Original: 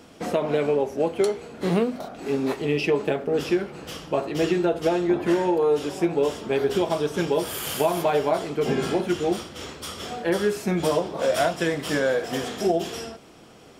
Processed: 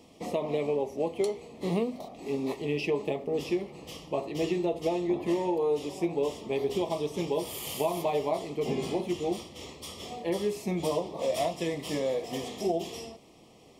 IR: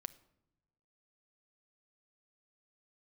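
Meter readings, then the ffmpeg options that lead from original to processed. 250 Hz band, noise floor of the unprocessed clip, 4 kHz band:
-6.5 dB, -48 dBFS, -6.5 dB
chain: -af "asuperstop=centerf=1500:order=4:qfactor=1.9,volume=0.473"

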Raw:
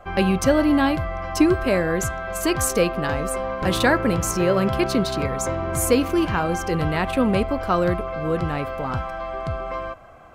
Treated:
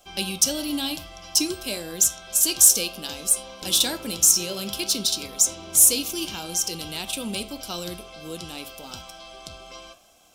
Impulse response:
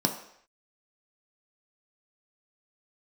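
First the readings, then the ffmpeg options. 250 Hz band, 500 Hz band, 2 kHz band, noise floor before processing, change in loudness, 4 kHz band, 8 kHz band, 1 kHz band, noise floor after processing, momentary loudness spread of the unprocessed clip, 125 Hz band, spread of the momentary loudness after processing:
-11.5 dB, -14.0 dB, -10.5 dB, -31 dBFS, +1.5 dB, +7.5 dB, +12.0 dB, -14.5 dB, -45 dBFS, 10 LU, -16.0 dB, 21 LU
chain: -filter_complex "[0:a]flanger=delay=7.9:depth=8.6:regen=-80:speed=0.57:shape=triangular,aexciter=amount=9.6:drive=9.7:freq=2900,asplit=2[s0][s1];[1:a]atrim=start_sample=2205,atrim=end_sample=3969[s2];[s1][s2]afir=irnorm=-1:irlink=0,volume=0.126[s3];[s0][s3]amix=inputs=2:normalize=0,volume=0.251"

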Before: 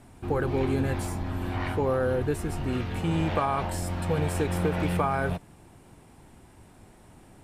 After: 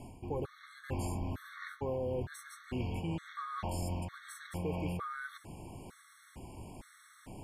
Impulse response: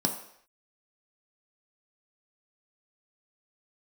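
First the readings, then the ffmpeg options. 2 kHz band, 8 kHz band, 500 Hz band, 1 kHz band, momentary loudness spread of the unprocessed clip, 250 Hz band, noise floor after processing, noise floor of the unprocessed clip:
-10.5 dB, -8.5 dB, -12.0 dB, -12.0 dB, 5 LU, -11.5 dB, -61 dBFS, -54 dBFS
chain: -af "areverse,acompressor=threshold=0.0141:ratio=12,areverse,afftfilt=real='re*gt(sin(2*PI*1.1*pts/sr)*(1-2*mod(floor(b*sr/1024/1100),2)),0)':imag='im*gt(sin(2*PI*1.1*pts/sr)*(1-2*mod(floor(b*sr/1024/1100),2)),0)':win_size=1024:overlap=0.75,volume=1.78"

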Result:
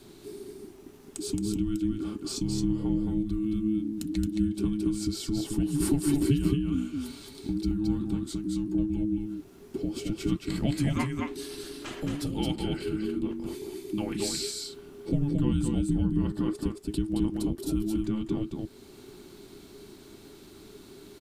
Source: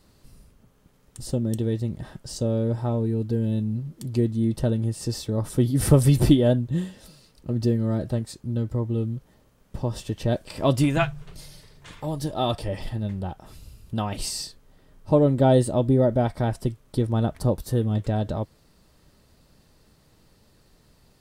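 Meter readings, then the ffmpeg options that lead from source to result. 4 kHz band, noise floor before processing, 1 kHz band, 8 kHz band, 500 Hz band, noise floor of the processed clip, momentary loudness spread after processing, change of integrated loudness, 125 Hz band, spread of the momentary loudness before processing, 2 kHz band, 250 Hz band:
-2.0 dB, -60 dBFS, -12.5 dB, -1.5 dB, -10.5 dB, -51 dBFS, 22 LU, -5.5 dB, -9.0 dB, 14 LU, -6.0 dB, -1.5 dB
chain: -filter_complex "[0:a]acompressor=threshold=0.00562:ratio=2,afreqshift=-430,asplit=2[s0][s1];[s1]aecho=0:1:221:0.668[s2];[s0][s2]amix=inputs=2:normalize=0,volume=2.37"

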